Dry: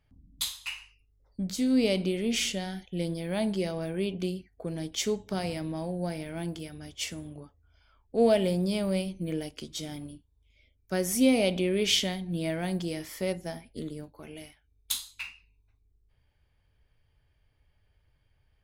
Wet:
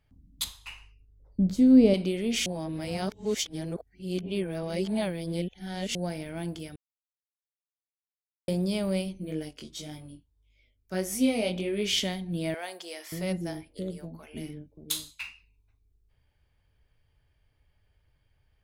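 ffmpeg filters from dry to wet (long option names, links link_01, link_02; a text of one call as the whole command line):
ffmpeg -i in.wav -filter_complex "[0:a]asettb=1/sr,asplit=3[link_01][link_02][link_03];[link_01]atrim=end=0.444[link_04];[link_02]atrim=start=0.44:end=1.94,asetpts=PTS-STARTPTS,afade=type=in:duration=0.004:curve=qsin,afade=type=out:start_time=1.496:duration=0.004:curve=qsin,tiltshelf=frequency=920:gain=9[link_05];[link_03]atrim=start=1.936[link_06];[link_04][link_05]acrossfade=duration=0.004:curve1=hsin:curve2=qsin[link_07];[link_07][link_06]acrossfade=duration=0.004:curve1=qsin:curve2=hsin,asplit=3[link_08][link_09][link_10];[link_08]afade=type=out:start_time=9.2:duration=0.02[link_11];[link_09]flanger=delay=19:depth=3.8:speed=1.7,afade=type=in:start_time=9.2:duration=0.02,afade=type=out:start_time=11.96:duration=0.02[link_12];[link_10]afade=type=in:start_time=11.96:duration=0.02[link_13];[link_11][link_12][link_13]amix=inputs=3:normalize=0,asettb=1/sr,asplit=3[link_14][link_15][link_16];[link_14]atrim=end=12.544[link_17];[link_15]atrim=start=12.54:end=15.21,asetpts=PTS-STARTPTS,afade=type=in:duration=0.004:curve=qsin,afade=type=out:start_time=2.666:duration=0.004:curve=qsin,acrossover=split=450[link_18][link_19];[link_18]adelay=580[link_20];[link_20][link_19]amix=inputs=2:normalize=0,atrim=end_sample=117747[link_21];[link_16]atrim=start=15.206[link_22];[link_17][link_21]acrossfade=duration=0.004:curve1=hsin:curve2=qsin[link_23];[link_23][link_22]acrossfade=duration=0.004:curve1=qsin:curve2=hsin,asplit=5[link_24][link_25][link_26][link_27][link_28];[link_24]atrim=end=2.462[link_29];[link_25]atrim=start=2.458:end=5.952,asetpts=PTS-STARTPTS,areverse[link_30];[link_26]atrim=start=5.948:end=6.76,asetpts=PTS-STARTPTS,afade=type=out:start_time=0.808:duration=0.004:curve=hsin[link_31];[link_27]atrim=start=6.76:end=8.48,asetpts=PTS-STARTPTS,volume=0[link_32];[link_28]atrim=start=8.48,asetpts=PTS-STARTPTS,afade=type=in:duration=0.004:curve=hsin[link_33];[link_29][link_30]acrossfade=duration=0.004:curve1=hsin:curve2=hsin[link_34];[link_31][link_32][link_33]concat=n=3:v=0:a=1[link_35];[link_34][link_35]acrossfade=duration=0.004:curve1=hsin:curve2=hsin" out.wav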